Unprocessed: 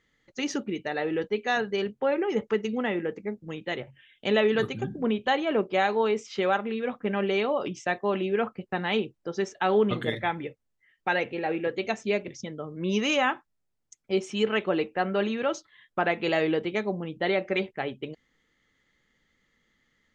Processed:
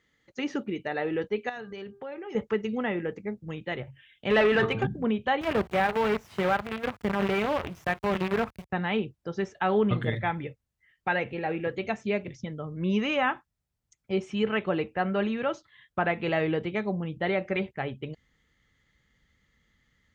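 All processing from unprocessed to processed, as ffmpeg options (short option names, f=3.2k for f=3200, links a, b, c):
-filter_complex "[0:a]asettb=1/sr,asplit=3[a][b][c];[a]atrim=end=1.494[d];[b]atrim=start=1.49:end=2.35,asetpts=PTS-STARTPTS,afade=t=in:d=0.004:c=qsin,afade=t=out:st=0.856:d=0.004:c=qsin,bandreject=f=398.7:t=h:w=4,bandreject=f=797.4:t=h:w=4,bandreject=f=1.1961k:t=h:w=4,bandreject=f=1.5948k:t=h:w=4,acompressor=threshold=-38dB:ratio=3:attack=3.2:release=140:knee=1:detection=peak[e];[c]atrim=start=2.346[f];[d][e]acrossfade=d=0.004:c1=hsin:c2=qsin[g];[g][f]acrossfade=d=0.004:c1=qsin:c2=hsin,asettb=1/sr,asplit=3[h][i][j];[h]atrim=end=4.304[k];[i]atrim=start=4.3:end=4.87,asetpts=PTS-STARTPTS,afade=t=in:d=0.004:c=qsin,afade=t=out:st=0.566:d=0.004:c=qsin,bandreject=f=112.2:t=h:w=4,bandreject=f=224.4:t=h:w=4,bandreject=f=336.6:t=h:w=4,bandreject=f=448.8:t=h:w=4,bandreject=f=561:t=h:w=4,bandreject=f=673.2:t=h:w=4,bandreject=f=785.4:t=h:w=4,bandreject=f=897.6:t=h:w=4,bandreject=f=1.0098k:t=h:w=4,bandreject=f=1.122k:t=h:w=4,bandreject=f=1.2342k:t=h:w=4,asplit=2[l][m];[m]highpass=f=720:p=1,volume=18dB,asoftclip=type=tanh:threshold=-12.5dB[n];[l][n]amix=inputs=2:normalize=0,lowpass=f=6.5k:p=1,volume=-6dB,adynamicsmooth=sensitivity=7:basefreq=5k[o];[j]atrim=start=4.866[p];[k][o]acrossfade=d=0.004:c1=hsin:c2=qsin[q];[q][p]acrossfade=d=0.004:c1=qsin:c2=hsin,asettb=1/sr,asplit=3[r][s][t];[r]atrim=end=5.414[u];[s]atrim=start=5.41:end=8.7,asetpts=PTS-STARTPTS,afade=t=in:d=0.004:c=qsin,afade=t=out:st=3.286:d=0.004:c=qsin,acrusher=bits=5:dc=4:mix=0:aa=0.000001,highpass=71[v];[t]atrim=start=8.696[w];[u][v]acrossfade=d=0.004:c1=hsin:c2=qsin[x];[x][w]acrossfade=d=0.004:c1=qsin:c2=hsin,highpass=42,asubboost=boost=4:cutoff=140,acrossover=split=3000[y][z];[z]acompressor=threshold=-54dB:ratio=4:attack=1:release=60[aa];[y][aa]amix=inputs=2:normalize=0"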